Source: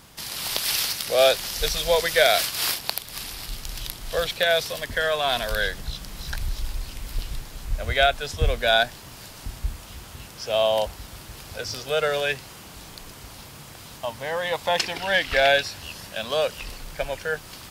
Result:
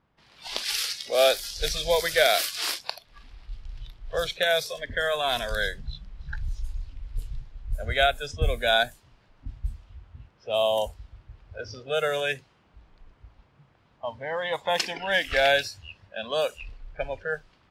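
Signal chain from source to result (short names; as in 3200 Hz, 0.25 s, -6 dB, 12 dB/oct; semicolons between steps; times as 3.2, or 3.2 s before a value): low-pass opened by the level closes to 1700 Hz, open at -18.5 dBFS; spectral noise reduction 15 dB; gain -2.5 dB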